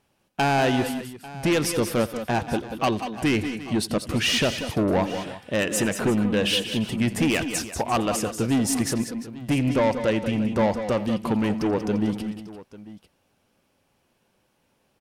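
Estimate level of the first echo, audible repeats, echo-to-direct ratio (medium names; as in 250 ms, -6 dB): -19.5 dB, 4, -7.0 dB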